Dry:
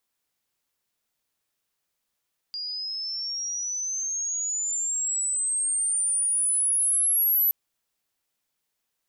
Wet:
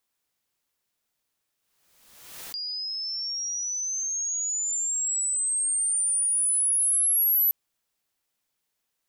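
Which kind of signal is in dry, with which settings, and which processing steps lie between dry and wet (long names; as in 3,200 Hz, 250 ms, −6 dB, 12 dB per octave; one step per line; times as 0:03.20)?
glide logarithmic 4,800 Hz → 12,000 Hz −30 dBFS → −18.5 dBFS 4.97 s
background raised ahead of every attack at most 48 dB per second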